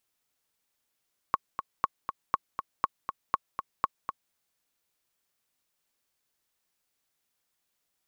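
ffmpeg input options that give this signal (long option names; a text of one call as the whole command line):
ffmpeg -f lavfi -i "aevalsrc='pow(10,(-10.5-8*gte(mod(t,2*60/240),60/240))/20)*sin(2*PI*1110*mod(t,60/240))*exp(-6.91*mod(t,60/240)/0.03)':duration=3:sample_rate=44100" out.wav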